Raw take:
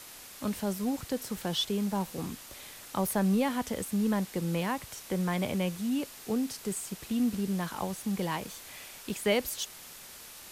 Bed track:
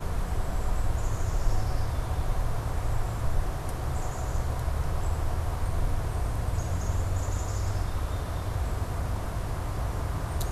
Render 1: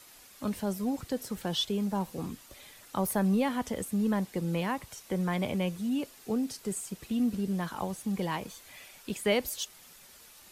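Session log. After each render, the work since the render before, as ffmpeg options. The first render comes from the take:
-af "afftdn=nr=8:nf=-48"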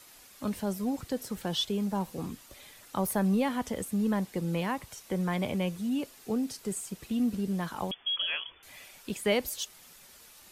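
-filter_complex "[0:a]asettb=1/sr,asplit=3[s0][s1][s2];[s0]atrim=end=7.914[s3];[s1]atrim=start=7.91:end=8.63,asetpts=PTS-STARTPTS,afade=t=in:d=0.004:c=qsin,afade=t=out:st=0.716:d=0.004:c=qsin,lowpass=f=3000:t=q:w=0.5098,lowpass=f=3000:t=q:w=0.6013,lowpass=f=3000:t=q:w=0.9,lowpass=f=3000:t=q:w=2.563,afreqshift=-3500[s4];[s2]atrim=start=8.626[s5];[s3][s4]acrossfade=d=0.004:c1=hsin:c2=qsin[s6];[s6][s5]acrossfade=d=0.004:c1=qsin:c2=hsin"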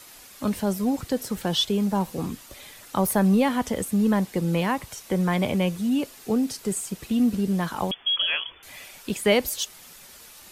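-af "volume=2.24"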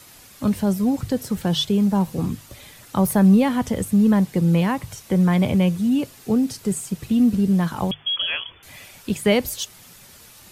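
-af "equalizer=f=110:w=0.83:g=12.5,bandreject=f=50:t=h:w=6,bandreject=f=100:t=h:w=6,bandreject=f=150:t=h:w=6"

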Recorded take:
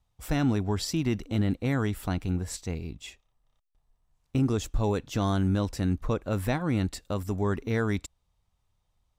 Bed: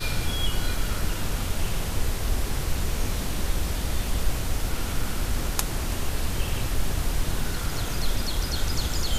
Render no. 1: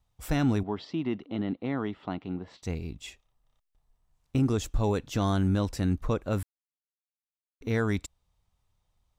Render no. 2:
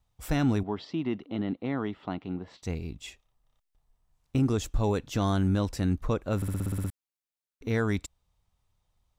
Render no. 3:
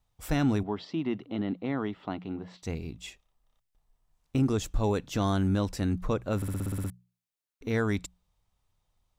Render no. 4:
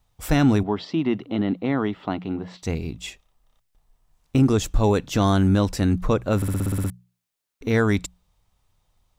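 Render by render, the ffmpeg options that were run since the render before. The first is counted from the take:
-filter_complex "[0:a]asettb=1/sr,asplit=3[s0][s1][s2];[s0]atrim=end=0.634[s3];[s1]atrim=start=0.63:end=2.63,asetpts=PTS-STARTPTS,afade=t=in:d=0.004:c=qsin,afade=t=out:st=1.996:d=0.004:c=qsin,highpass=220,equalizer=f=500:t=q:w=4:g=-4,equalizer=f=1600:t=q:w=4:g=-8,equalizer=f=2400:t=q:w=4:g=-7,lowpass=f=3200:w=0.5412,lowpass=f=3200:w=1.3066[s4];[s2]atrim=start=2.626[s5];[s3][s4]acrossfade=d=0.004:c1=hsin:c2=qsin[s6];[s6][s5]acrossfade=d=0.004:c1=qsin:c2=hsin,asplit=3[s7][s8][s9];[s7]atrim=end=6.43,asetpts=PTS-STARTPTS,afade=t=out:st=6.426:d=0.004:c=hsin[s10];[s8]atrim=start=6.43:end=7.61,asetpts=PTS-STARTPTS,volume=0[s11];[s9]atrim=start=7.61,asetpts=PTS-STARTPTS,afade=t=in:d=0.004:c=hsin[s12];[s10][s11][s12]concat=n=3:v=0:a=1"
-filter_complex "[0:a]asplit=10[s0][s1][s2][s3][s4][s5][s6][s7][s8][s9];[s0]atrim=end=6.422[s10];[s1]atrim=start=6.358:end=6.422[s11];[s2]atrim=start=6.358:end=6.422[s12];[s3]atrim=start=6.358:end=6.422[s13];[s4]atrim=start=6.358:end=6.422[s14];[s5]atrim=start=6.358:end=6.422[s15];[s6]atrim=start=6.358:end=6.422[s16];[s7]atrim=start=6.358:end=6.422[s17];[s8]atrim=start=6.358:end=6.422[s18];[s9]atrim=start=6.898[s19];[s10][s11]acrossfade=d=0.004:c1=hsin:c2=hsin[s20];[s20][s12]acrossfade=d=0.004:c1=hsin:c2=hsin[s21];[s21][s13]acrossfade=d=0.004:c1=hsin:c2=hsin[s22];[s22][s14]acrossfade=d=0.004:c1=hsin:c2=hsin[s23];[s23][s15]acrossfade=d=0.004:c1=hsin:c2=hsin[s24];[s24][s16]acrossfade=d=0.004:c1=hsin:c2=hsin[s25];[s25][s17]acrossfade=d=0.004:c1=hsin:c2=hsin[s26];[s26][s18]acrossfade=d=0.004:c1=hsin:c2=hsin[s27];[s27][s19]acrossfade=d=0.004:c1=hsin:c2=hsin"
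-af "equalizer=f=69:t=o:w=0.87:g=-3.5,bandreject=f=60:t=h:w=6,bandreject=f=120:t=h:w=6,bandreject=f=180:t=h:w=6"
-af "volume=2.51"

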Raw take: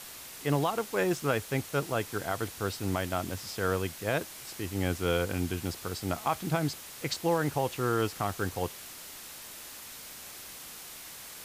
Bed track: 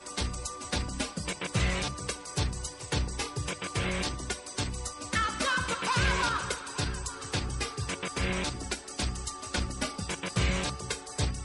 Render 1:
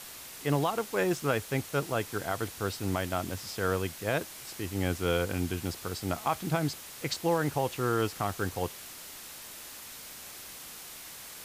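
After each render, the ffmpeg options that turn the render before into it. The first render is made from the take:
-af anull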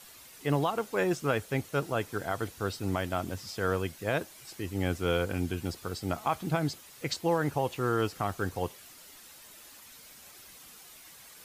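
-af "afftdn=nr=9:nf=-46"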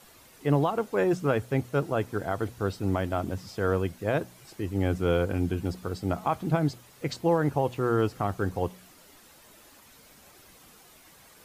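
-af "tiltshelf=f=1400:g=5,bandreject=f=60.93:t=h:w=4,bandreject=f=121.86:t=h:w=4,bandreject=f=182.79:t=h:w=4,bandreject=f=243.72:t=h:w=4"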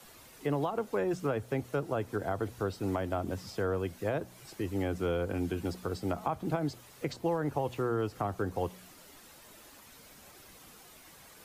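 -filter_complex "[0:a]acrossover=split=100|230|1100[s0][s1][s2][s3];[s0]acompressor=threshold=0.00794:ratio=4[s4];[s1]acompressor=threshold=0.00562:ratio=4[s5];[s2]acompressor=threshold=0.0316:ratio=4[s6];[s3]acompressor=threshold=0.00708:ratio=4[s7];[s4][s5][s6][s7]amix=inputs=4:normalize=0"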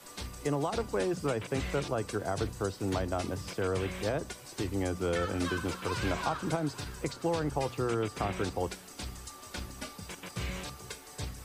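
-filter_complex "[1:a]volume=0.355[s0];[0:a][s0]amix=inputs=2:normalize=0"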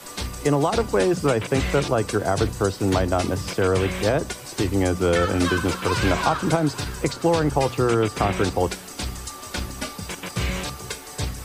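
-af "volume=3.55"

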